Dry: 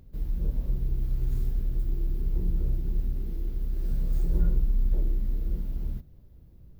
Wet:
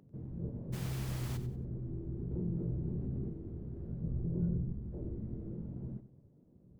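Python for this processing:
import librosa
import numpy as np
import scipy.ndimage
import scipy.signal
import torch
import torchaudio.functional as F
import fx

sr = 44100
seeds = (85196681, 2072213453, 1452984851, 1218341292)

y = fx.vibrato(x, sr, rate_hz=1.4, depth_cents=32.0)
y = scipy.signal.sosfilt(scipy.signal.bessel(2, 550.0, 'lowpass', norm='mag', fs=sr, output='sos'), y)
y = fx.dmg_noise_colour(y, sr, seeds[0], colour='pink', level_db=-47.0, at=(0.72, 1.36), fade=0.02)
y = fx.low_shelf(y, sr, hz=290.0, db=10.0, at=(4.04, 4.72))
y = fx.rider(y, sr, range_db=3, speed_s=0.5)
y = fx.spec_gate(y, sr, threshold_db=-10, keep='weak')
y = fx.echo_feedback(y, sr, ms=93, feedback_pct=28, wet_db=-12.5)
y = fx.env_flatten(y, sr, amount_pct=50, at=(2.31, 3.29))
y = F.gain(torch.from_numpy(y), -2.5).numpy()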